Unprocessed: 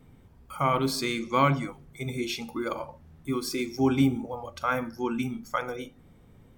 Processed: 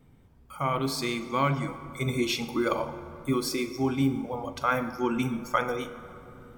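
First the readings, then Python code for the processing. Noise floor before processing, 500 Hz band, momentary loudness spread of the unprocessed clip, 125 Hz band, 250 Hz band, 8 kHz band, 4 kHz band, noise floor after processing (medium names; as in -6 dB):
-55 dBFS, +0.5 dB, 14 LU, 0.0 dB, -0.5 dB, +1.0 dB, +1.0 dB, -56 dBFS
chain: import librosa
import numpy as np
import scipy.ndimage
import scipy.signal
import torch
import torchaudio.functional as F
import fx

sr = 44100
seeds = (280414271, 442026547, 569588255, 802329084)

y = fx.rider(x, sr, range_db=5, speed_s=0.5)
y = fx.rev_plate(y, sr, seeds[0], rt60_s=2.9, hf_ratio=0.5, predelay_ms=0, drr_db=11.0)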